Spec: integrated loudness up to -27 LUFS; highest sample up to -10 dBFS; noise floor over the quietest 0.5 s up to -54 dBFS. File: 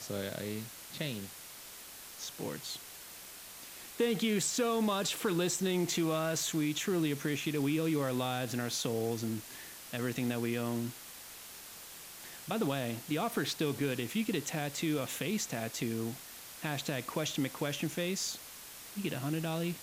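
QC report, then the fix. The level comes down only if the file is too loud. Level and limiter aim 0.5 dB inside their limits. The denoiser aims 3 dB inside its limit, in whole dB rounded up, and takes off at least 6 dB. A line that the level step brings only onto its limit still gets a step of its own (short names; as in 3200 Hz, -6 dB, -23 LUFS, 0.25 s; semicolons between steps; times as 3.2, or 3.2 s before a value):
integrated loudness -34.5 LUFS: OK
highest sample -19.0 dBFS: OK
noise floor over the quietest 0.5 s -49 dBFS: fail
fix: denoiser 8 dB, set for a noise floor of -49 dBFS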